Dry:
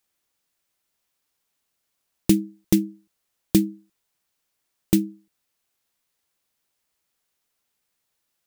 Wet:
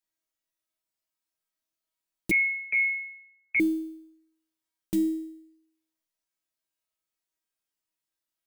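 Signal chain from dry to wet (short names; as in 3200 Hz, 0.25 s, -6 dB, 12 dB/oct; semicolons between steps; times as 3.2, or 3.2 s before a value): in parallel at -11 dB: short-mantissa float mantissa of 2-bit; on the sum: resonator 320 Hz, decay 0.75 s, mix 90%; 2.31–3.6 inverted band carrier 2500 Hz; gain +2 dB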